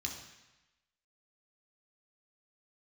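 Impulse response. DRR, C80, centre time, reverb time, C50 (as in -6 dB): -0.5 dB, 8.0 dB, 33 ms, 1.0 s, 5.5 dB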